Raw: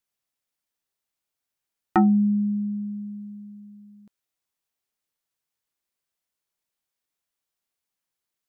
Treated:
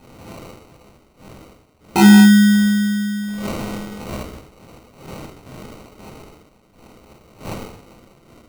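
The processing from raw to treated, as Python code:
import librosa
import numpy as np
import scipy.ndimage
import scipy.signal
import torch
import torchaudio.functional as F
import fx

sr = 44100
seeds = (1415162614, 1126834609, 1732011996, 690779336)

y = fx.dmg_wind(x, sr, seeds[0], corner_hz=530.0, level_db=-44.0)
y = fx.rev_gated(y, sr, seeds[1], gate_ms=310, shape='falling', drr_db=-6.0)
y = fx.sample_hold(y, sr, seeds[2], rate_hz=1700.0, jitter_pct=0)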